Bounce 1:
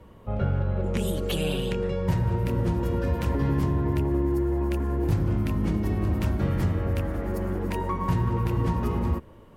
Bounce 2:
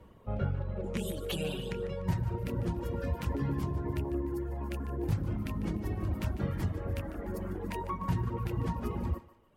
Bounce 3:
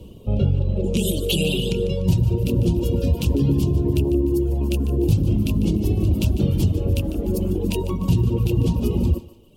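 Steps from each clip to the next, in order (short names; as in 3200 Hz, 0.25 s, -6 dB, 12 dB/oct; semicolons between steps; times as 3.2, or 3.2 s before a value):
reverb removal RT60 1.3 s; thinning echo 0.148 s, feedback 38%, high-pass 420 Hz, level -14 dB; gain -5 dB
EQ curve 400 Hz 0 dB, 1900 Hz -27 dB, 2700 Hz +2 dB; in parallel at +1.5 dB: limiter -28 dBFS, peak gain reduction 8 dB; on the sum: gain +8.5 dB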